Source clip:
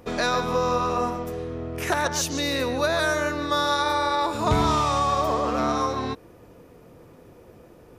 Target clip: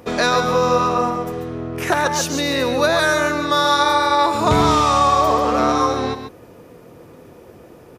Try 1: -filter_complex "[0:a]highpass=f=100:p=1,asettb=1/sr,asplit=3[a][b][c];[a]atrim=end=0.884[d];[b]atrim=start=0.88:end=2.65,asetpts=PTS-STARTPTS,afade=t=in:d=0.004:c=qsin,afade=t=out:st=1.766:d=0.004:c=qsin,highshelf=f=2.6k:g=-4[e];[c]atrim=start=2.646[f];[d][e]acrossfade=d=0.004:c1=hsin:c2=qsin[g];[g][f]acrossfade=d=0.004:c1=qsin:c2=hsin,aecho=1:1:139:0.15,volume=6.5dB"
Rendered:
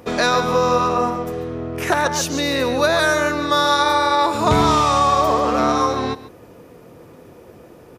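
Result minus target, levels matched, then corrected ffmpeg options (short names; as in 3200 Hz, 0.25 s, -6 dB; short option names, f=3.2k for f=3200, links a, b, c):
echo-to-direct -7.5 dB
-filter_complex "[0:a]highpass=f=100:p=1,asettb=1/sr,asplit=3[a][b][c];[a]atrim=end=0.884[d];[b]atrim=start=0.88:end=2.65,asetpts=PTS-STARTPTS,afade=t=in:d=0.004:c=qsin,afade=t=out:st=1.766:d=0.004:c=qsin,highshelf=f=2.6k:g=-4[e];[c]atrim=start=2.646[f];[d][e]acrossfade=d=0.004:c1=hsin:c2=qsin[g];[g][f]acrossfade=d=0.004:c1=qsin:c2=hsin,aecho=1:1:139:0.355,volume=6.5dB"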